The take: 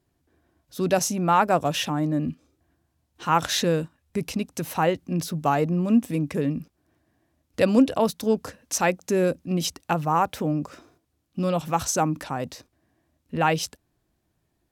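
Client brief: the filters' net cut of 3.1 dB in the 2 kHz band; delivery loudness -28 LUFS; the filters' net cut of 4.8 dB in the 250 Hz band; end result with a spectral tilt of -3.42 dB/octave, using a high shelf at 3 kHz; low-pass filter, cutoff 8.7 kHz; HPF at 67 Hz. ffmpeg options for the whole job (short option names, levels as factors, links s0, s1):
-af "highpass=67,lowpass=8700,equalizer=f=250:t=o:g=-6.5,equalizer=f=2000:t=o:g=-8,highshelf=f=3000:g=9,volume=0.75"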